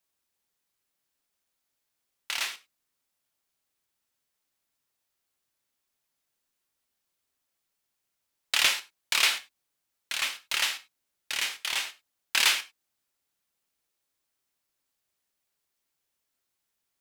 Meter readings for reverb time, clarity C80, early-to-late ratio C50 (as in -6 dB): no single decay rate, 22.0 dB, 16.5 dB